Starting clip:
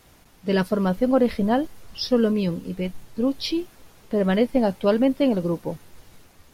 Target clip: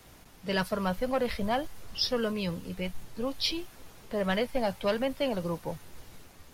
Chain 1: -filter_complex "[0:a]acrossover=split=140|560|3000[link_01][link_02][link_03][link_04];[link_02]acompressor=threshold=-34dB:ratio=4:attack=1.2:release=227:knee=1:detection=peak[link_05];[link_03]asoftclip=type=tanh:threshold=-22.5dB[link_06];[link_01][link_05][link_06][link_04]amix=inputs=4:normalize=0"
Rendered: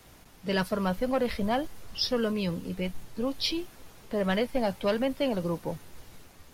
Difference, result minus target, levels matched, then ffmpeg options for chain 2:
downward compressor: peak gain reduction −7 dB
-filter_complex "[0:a]acrossover=split=140|560|3000[link_01][link_02][link_03][link_04];[link_02]acompressor=threshold=-43.5dB:ratio=4:attack=1.2:release=227:knee=1:detection=peak[link_05];[link_03]asoftclip=type=tanh:threshold=-22.5dB[link_06];[link_01][link_05][link_06][link_04]amix=inputs=4:normalize=0"

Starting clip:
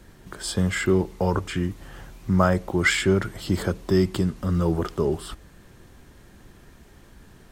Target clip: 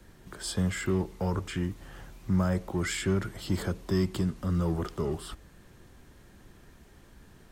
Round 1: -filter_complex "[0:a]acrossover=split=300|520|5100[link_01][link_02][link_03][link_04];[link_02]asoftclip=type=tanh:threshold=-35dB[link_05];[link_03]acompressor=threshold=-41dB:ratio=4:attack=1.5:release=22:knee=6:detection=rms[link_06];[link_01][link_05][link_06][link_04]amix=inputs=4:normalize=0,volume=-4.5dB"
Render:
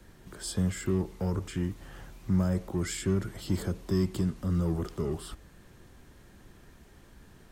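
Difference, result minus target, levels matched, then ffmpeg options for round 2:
downward compressor: peak gain reduction +8 dB
-filter_complex "[0:a]acrossover=split=300|520|5100[link_01][link_02][link_03][link_04];[link_02]asoftclip=type=tanh:threshold=-35dB[link_05];[link_03]acompressor=threshold=-30dB:ratio=4:attack=1.5:release=22:knee=6:detection=rms[link_06];[link_01][link_05][link_06][link_04]amix=inputs=4:normalize=0,volume=-4.5dB"

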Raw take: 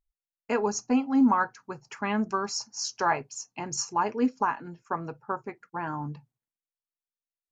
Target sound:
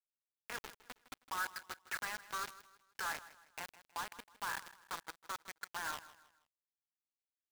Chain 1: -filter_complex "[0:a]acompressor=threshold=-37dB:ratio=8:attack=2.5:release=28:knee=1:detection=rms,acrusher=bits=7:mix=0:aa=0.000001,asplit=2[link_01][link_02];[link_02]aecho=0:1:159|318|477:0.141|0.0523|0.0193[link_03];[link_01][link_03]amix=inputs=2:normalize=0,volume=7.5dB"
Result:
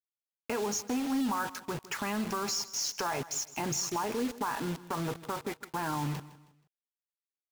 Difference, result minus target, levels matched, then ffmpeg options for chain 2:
2,000 Hz band −8.0 dB
-filter_complex "[0:a]acompressor=threshold=-37dB:ratio=8:attack=2.5:release=28:knee=1:detection=rms,bandpass=frequency=1600:width_type=q:width=2.7:csg=0,acrusher=bits=7:mix=0:aa=0.000001,asplit=2[link_01][link_02];[link_02]aecho=0:1:159|318|477:0.141|0.0523|0.0193[link_03];[link_01][link_03]amix=inputs=2:normalize=0,volume=7.5dB"

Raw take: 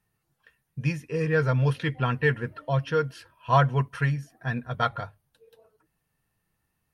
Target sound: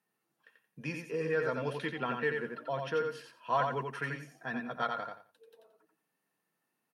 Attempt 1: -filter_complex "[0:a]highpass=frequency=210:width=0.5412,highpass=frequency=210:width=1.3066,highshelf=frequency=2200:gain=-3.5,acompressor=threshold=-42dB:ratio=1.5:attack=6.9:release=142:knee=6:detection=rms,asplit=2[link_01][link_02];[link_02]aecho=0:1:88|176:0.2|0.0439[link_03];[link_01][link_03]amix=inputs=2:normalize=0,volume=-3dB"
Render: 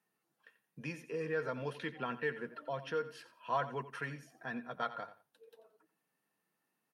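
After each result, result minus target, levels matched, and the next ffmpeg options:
echo-to-direct −9.5 dB; downward compressor: peak gain reduction +4 dB
-filter_complex "[0:a]highpass=frequency=210:width=0.5412,highpass=frequency=210:width=1.3066,highshelf=frequency=2200:gain=-3.5,acompressor=threshold=-42dB:ratio=1.5:attack=6.9:release=142:knee=6:detection=rms,asplit=2[link_01][link_02];[link_02]aecho=0:1:88|176|264:0.596|0.131|0.0288[link_03];[link_01][link_03]amix=inputs=2:normalize=0,volume=-3dB"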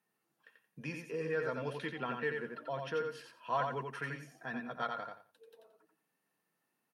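downward compressor: peak gain reduction +4 dB
-filter_complex "[0:a]highpass=frequency=210:width=0.5412,highpass=frequency=210:width=1.3066,highshelf=frequency=2200:gain=-3.5,acompressor=threshold=-30.5dB:ratio=1.5:attack=6.9:release=142:knee=6:detection=rms,asplit=2[link_01][link_02];[link_02]aecho=0:1:88|176|264:0.596|0.131|0.0288[link_03];[link_01][link_03]amix=inputs=2:normalize=0,volume=-3dB"

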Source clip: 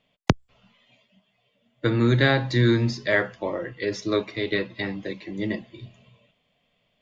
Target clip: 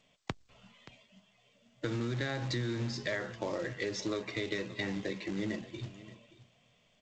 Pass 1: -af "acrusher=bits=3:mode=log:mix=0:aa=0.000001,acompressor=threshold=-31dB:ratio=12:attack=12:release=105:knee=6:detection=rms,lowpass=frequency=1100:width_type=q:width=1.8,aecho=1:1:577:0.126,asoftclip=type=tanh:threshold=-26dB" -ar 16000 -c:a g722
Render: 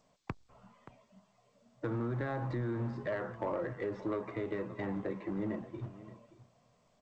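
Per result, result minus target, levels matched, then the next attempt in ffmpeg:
soft clipping: distortion +9 dB; 1,000 Hz band +4.0 dB
-af "acrusher=bits=3:mode=log:mix=0:aa=0.000001,acompressor=threshold=-31dB:ratio=12:attack=12:release=105:knee=6:detection=rms,lowpass=frequency=1100:width_type=q:width=1.8,aecho=1:1:577:0.126,asoftclip=type=tanh:threshold=-18dB" -ar 16000 -c:a g722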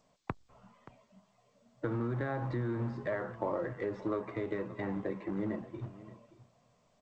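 1,000 Hz band +4.5 dB
-af "acrusher=bits=3:mode=log:mix=0:aa=0.000001,acompressor=threshold=-31dB:ratio=12:attack=12:release=105:knee=6:detection=rms,aecho=1:1:577:0.126,asoftclip=type=tanh:threshold=-18dB" -ar 16000 -c:a g722

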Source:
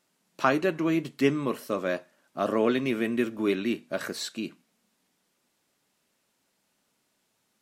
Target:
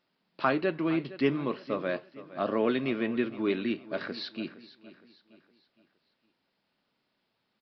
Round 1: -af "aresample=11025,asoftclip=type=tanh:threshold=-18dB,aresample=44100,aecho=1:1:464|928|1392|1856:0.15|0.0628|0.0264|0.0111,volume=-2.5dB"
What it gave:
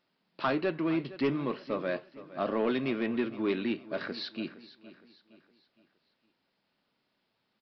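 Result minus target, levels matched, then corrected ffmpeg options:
soft clipping: distortion +15 dB
-af "aresample=11025,asoftclip=type=tanh:threshold=-7dB,aresample=44100,aecho=1:1:464|928|1392|1856:0.15|0.0628|0.0264|0.0111,volume=-2.5dB"

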